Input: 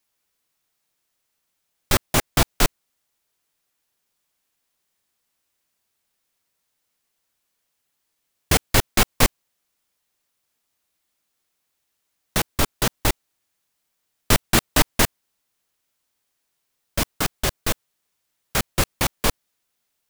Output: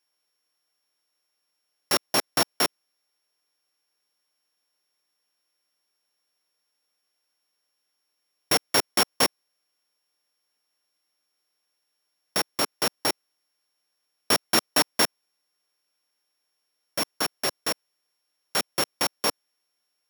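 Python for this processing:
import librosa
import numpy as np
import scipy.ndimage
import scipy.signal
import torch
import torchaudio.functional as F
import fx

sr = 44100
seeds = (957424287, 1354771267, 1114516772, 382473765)

y = np.r_[np.sort(x[:len(x) // 8 * 8].reshape(-1, 8), axis=1).ravel(), x[len(x) // 8 * 8:]]
y = scipy.signal.sosfilt(scipy.signal.butter(2, 300.0, 'highpass', fs=sr, output='sos'), y)
y = y * 10.0 ** (-2.0 / 20.0)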